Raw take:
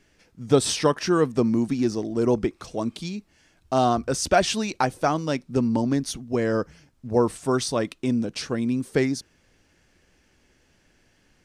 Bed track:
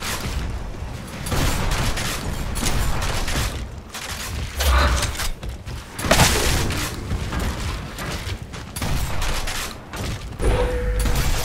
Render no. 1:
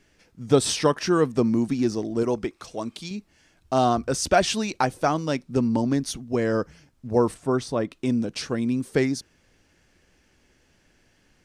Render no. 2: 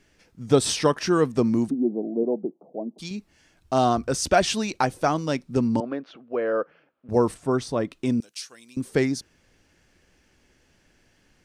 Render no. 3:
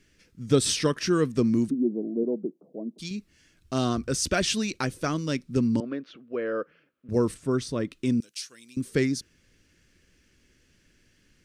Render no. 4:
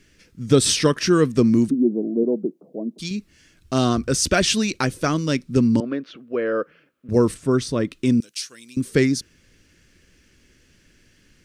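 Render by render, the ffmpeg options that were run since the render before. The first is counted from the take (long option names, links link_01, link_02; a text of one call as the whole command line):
ffmpeg -i in.wav -filter_complex "[0:a]asettb=1/sr,asplit=3[link_01][link_02][link_03];[link_01]atrim=end=2.234[link_04];[link_02]atrim=start=2.23:end=3.11,asetpts=PTS-STARTPTS,afade=type=in:duration=0.004:curve=qsin,afade=type=out:start_time=0.876:duration=0.004:curve=qsin,lowshelf=frequency=430:gain=-7[link_05];[link_03]atrim=start=3.106[link_06];[link_04][link_05]acrossfade=duration=0.004:curve1=hsin:curve2=qsin[link_07];[link_07][link_06]acrossfade=duration=0.004:curve1=qsin:curve2=hsin,asettb=1/sr,asplit=3[link_08][link_09][link_10];[link_08]atrim=end=7.344[link_11];[link_09]atrim=start=7.34:end=7.93,asetpts=PTS-STARTPTS,afade=type=in:duration=0.004:curve=qsin,afade=type=out:start_time=0.586:duration=0.004:curve=qsin,highshelf=frequency=2300:gain=-11[link_12];[link_10]atrim=start=7.926[link_13];[link_11][link_12]acrossfade=duration=0.004:curve1=hsin:curve2=qsin[link_14];[link_14][link_13]acrossfade=duration=0.004:curve1=qsin:curve2=hsin" out.wav
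ffmpeg -i in.wav -filter_complex "[0:a]asplit=3[link_01][link_02][link_03];[link_01]afade=type=out:start_time=1.69:duration=0.02[link_04];[link_02]asuperpass=centerf=360:order=12:qfactor=0.59,afade=type=in:start_time=1.69:duration=0.02,afade=type=out:start_time=2.98:duration=0.02[link_05];[link_03]afade=type=in:start_time=2.98:duration=0.02[link_06];[link_04][link_05][link_06]amix=inputs=3:normalize=0,asettb=1/sr,asplit=3[link_07][link_08][link_09];[link_07]atrim=end=5.804[link_10];[link_08]atrim=start=5.8:end=7.09,asetpts=PTS-STARTPTS,afade=type=in:duration=0.004:curve=qsin,afade=type=out:start_time=1.286:duration=0.004:curve=qsin,highpass=440,equalizer=frequency=530:width_type=q:width=4:gain=6,equalizer=frequency=930:width_type=q:width=4:gain=-4,equalizer=frequency=1300:width_type=q:width=4:gain=4,equalizer=frequency=2000:width_type=q:width=4:gain=-7,lowpass=frequency=2600:width=0.5412,lowpass=frequency=2600:width=1.3066[link_11];[link_09]atrim=start=7.086[link_12];[link_10][link_11]acrossfade=duration=0.004:curve1=hsin:curve2=qsin[link_13];[link_13][link_12]acrossfade=duration=0.004:curve1=qsin:curve2=hsin,asettb=1/sr,asplit=3[link_14][link_15][link_16];[link_14]atrim=end=8.204[link_17];[link_15]atrim=start=8.2:end=8.77,asetpts=PTS-STARTPTS,afade=type=in:duration=0.004:curve=qsin,afade=type=out:start_time=0.566:duration=0.004:curve=qsin,aderivative[link_18];[link_16]atrim=start=8.766[link_19];[link_17][link_18]acrossfade=duration=0.004:curve1=hsin:curve2=qsin[link_20];[link_20][link_19]acrossfade=duration=0.004:curve1=qsin:curve2=hsin" out.wav
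ffmpeg -i in.wav -af "equalizer=frequency=790:width=1.6:gain=-15" out.wav
ffmpeg -i in.wav -af "volume=6.5dB,alimiter=limit=-3dB:level=0:latency=1" out.wav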